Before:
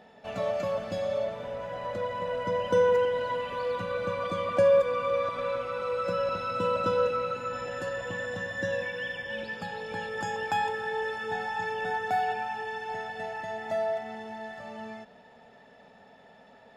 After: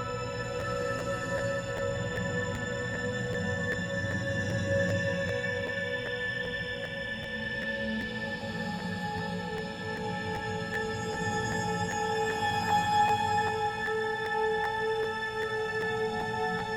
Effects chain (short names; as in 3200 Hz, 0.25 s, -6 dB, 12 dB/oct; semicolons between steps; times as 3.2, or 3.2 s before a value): tone controls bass +10 dB, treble +6 dB; Paulstretch 4.3×, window 0.50 s, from 7.57; crackling interface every 0.39 s, samples 512, repeat, from 0.59